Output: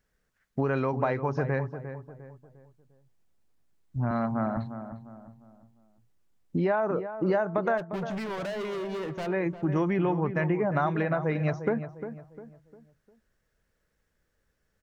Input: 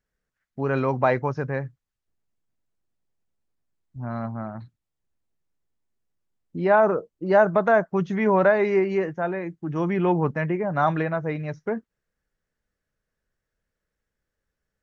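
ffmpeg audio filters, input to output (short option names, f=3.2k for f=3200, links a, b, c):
-filter_complex "[0:a]asettb=1/sr,asplit=3[a][b][c];[a]atrim=end=4.114[d];[b]atrim=start=4.11:end=4.57,asetpts=PTS-STARTPTS,afade=t=in:d=0.004:c=qsin,afade=t=out:st=0.456:d=0.004:c=qsin,highpass=f=140:w=0.5412,highpass=f=140:w=1.3066[e];[c]atrim=start=4.566[f];[d][e]acrossfade=d=0.004:c1=hsin:c2=qsin[g];[g][f]acrossfade=d=0.004:c1=qsin:c2=hsin,acompressor=threshold=-30dB:ratio=10,asplit=3[h][i][j];[h]afade=t=out:st=7.77:d=0.02[k];[i]asoftclip=type=hard:threshold=-38.5dB,afade=t=in:st=7.77:d=0.02,afade=t=out:st=9.26:d=0.02[l];[j]afade=t=in:st=9.26:d=0.02[m];[k][l][m]amix=inputs=3:normalize=0,asplit=2[n][o];[o]adelay=352,lowpass=f=1.5k:p=1,volume=-10dB,asplit=2[p][q];[q]adelay=352,lowpass=f=1.5k:p=1,volume=0.4,asplit=2[r][s];[s]adelay=352,lowpass=f=1.5k:p=1,volume=0.4,asplit=2[t][u];[u]adelay=352,lowpass=f=1.5k:p=1,volume=0.4[v];[n][p][r][t][v]amix=inputs=5:normalize=0,volume=6.5dB"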